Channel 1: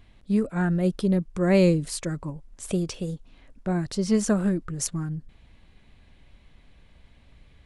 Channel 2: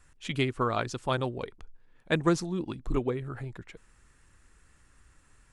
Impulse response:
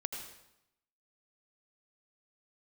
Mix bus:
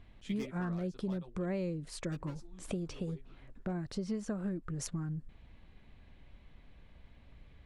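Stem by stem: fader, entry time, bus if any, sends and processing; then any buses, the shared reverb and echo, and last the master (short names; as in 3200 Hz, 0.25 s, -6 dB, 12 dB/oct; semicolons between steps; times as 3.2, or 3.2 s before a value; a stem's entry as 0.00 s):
-2.5 dB, 0.00 s, no send, LPF 2600 Hz 6 dB/oct; compressor 5:1, threshold -32 dBFS, peak gain reduction 15.5 dB
-4.5 dB, 0.00 s, no send, gate with hold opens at -49 dBFS; wavefolder -19.5 dBFS; ensemble effect; auto duck -16 dB, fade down 0.85 s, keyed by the first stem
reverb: off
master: dry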